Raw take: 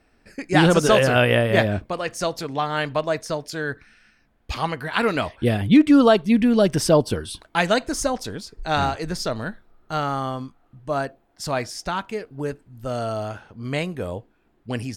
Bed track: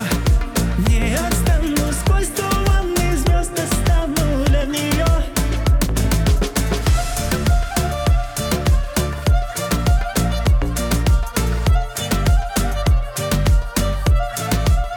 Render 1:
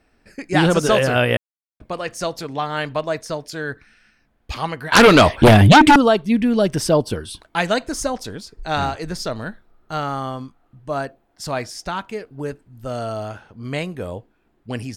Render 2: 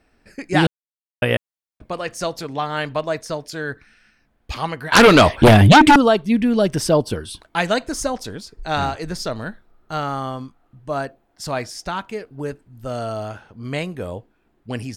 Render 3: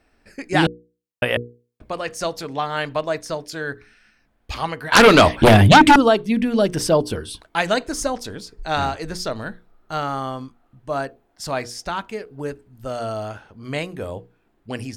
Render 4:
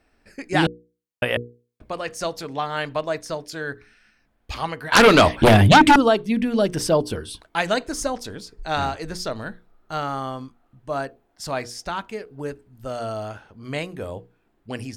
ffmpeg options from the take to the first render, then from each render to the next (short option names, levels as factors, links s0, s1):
-filter_complex "[0:a]asettb=1/sr,asplit=3[s0][s1][s2];[s0]atrim=end=4.924[s3];[s1]atrim=start=4.92:end=5.96,asetpts=PTS-STARTPTS,afade=t=in:d=0.004:c=qsin,afade=t=out:st=1.036:d=0.004:c=qsin,aeval=exprs='0.596*sin(PI/2*3.98*val(0)/0.596)':c=same[s4];[s2]atrim=start=5.956[s5];[s3][s4]acrossfade=d=0.004:c1=hsin:c2=qsin[s6];[s6][s5]acrossfade=d=0.004:c1=qsin:c2=hsin,asplit=3[s7][s8][s9];[s7]atrim=end=1.37,asetpts=PTS-STARTPTS,afade=t=out:st=1.366:d=0.004:c=hsin[s10];[s8]atrim=start=1.37:end=1.8,asetpts=PTS-STARTPTS,volume=0[s11];[s9]atrim=start=1.8,asetpts=PTS-STARTPTS,afade=t=in:d=0.004:c=hsin[s12];[s10][s11][s12]concat=n=3:v=0:a=1"
-filter_complex "[0:a]asplit=3[s0][s1][s2];[s0]atrim=end=0.67,asetpts=PTS-STARTPTS,afade=t=out:st=0.666:d=0.004:c=hsin[s3];[s1]atrim=start=0.67:end=1.22,asetpts=PTS-STARTPTS,volume=0[s4];[s2]atrim=start=1.22,asetpts=PTS-STARTPTS,afade=t=in:d=0.004:c=hsin[s5];[s3][s4][s5]concat=n=3:v=0:a=1"
-af "equalizer=f=150:t=o:w=1:g=-2.5,bandreject=f=60:t=h:w=6,bandreject=f=120:t=h:w=6,bandreject=f=180:t=h:w=6,bandreject=f=240:t=h:w=6,bandreject=f=300:t=h:w=6,bandreject=f=360:t=h:w=6,bandreject=f=420:t=h:w=6,bandreject=f=480:t=h:w=6"
-af "volume=0.794"